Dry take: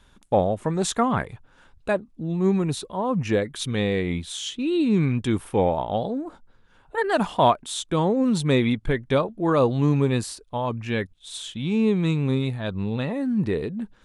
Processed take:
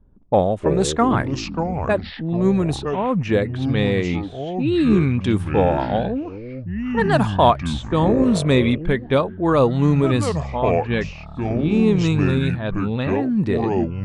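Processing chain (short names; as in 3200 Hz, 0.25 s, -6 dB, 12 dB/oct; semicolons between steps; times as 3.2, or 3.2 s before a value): low-pass opened by the level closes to 370 Hz, open at -18.5 dBFS; echoes that change speed 0.178 s, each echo -6 st, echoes 3, each echo -6 dB; gain +3.5 dB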